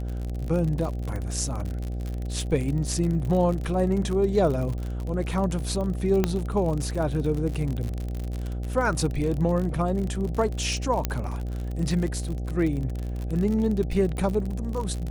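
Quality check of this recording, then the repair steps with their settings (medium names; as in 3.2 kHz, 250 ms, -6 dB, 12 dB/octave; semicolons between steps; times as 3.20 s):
buzz 60 Hz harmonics 13 -30 dBFS
crackle 51 per s -29 dBFS
6.24 s: pop -9 dBFS
11.05 s: pop -9 dBFS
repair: de-click; de-hum 60 Hz, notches 13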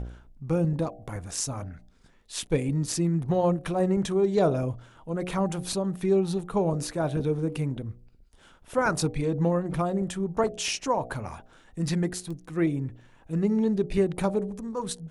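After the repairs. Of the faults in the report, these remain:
nothing left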